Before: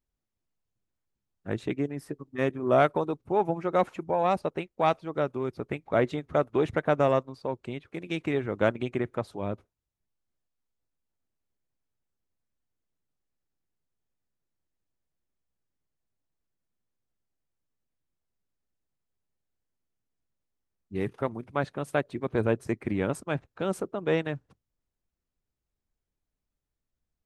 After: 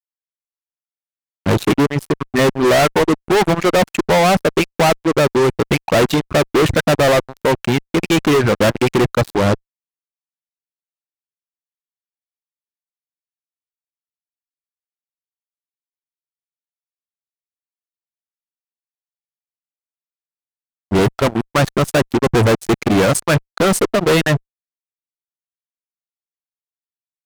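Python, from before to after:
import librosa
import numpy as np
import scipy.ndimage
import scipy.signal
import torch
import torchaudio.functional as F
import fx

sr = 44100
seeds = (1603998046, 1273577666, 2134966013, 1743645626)

y = fx.dereverb_blind(x, sr, rt60_s=1.2)
y = fx.fuzz(y, sr, gain_db=40.0, gate_db=-47.0)
y = y * 10.0 ** (2.5 / 20.0)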